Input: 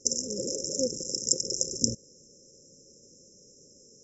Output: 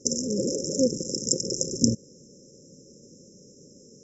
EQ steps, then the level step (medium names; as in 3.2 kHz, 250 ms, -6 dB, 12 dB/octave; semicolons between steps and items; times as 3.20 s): peaking EQ 200 Hz +11 dB 2.7 oct; 0.0 dB